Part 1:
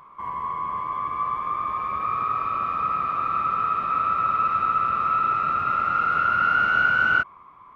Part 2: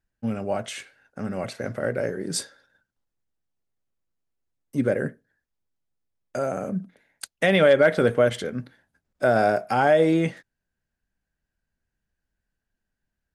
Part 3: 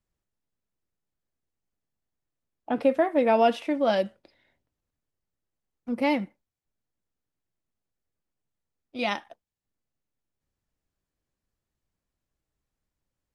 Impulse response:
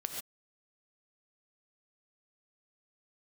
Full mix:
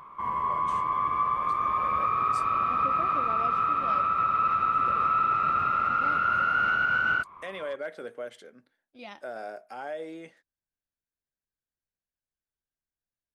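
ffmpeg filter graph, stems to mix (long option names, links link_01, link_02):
-filter_complex "[0:a]volume=1dB[link_01];[1:a]highpass=340,volume=-17.5dB[link_02];[2:a]volume=-16dB[link_03];[link_01][link_02][link_03]amix=inputs=3:normalize=0,alimiter=limit=-17dB:level=0:latency=1:release=219"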